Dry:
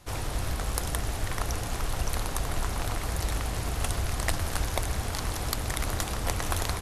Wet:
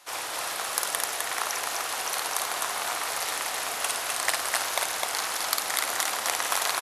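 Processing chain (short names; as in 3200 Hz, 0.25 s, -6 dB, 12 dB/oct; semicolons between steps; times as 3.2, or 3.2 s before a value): HPF 770 Hz 12 dB/oct; on a send: loudspeakers at several distances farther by 18 m -4 dB, 88 m -3 dB; on the sum: gain +4.5 dB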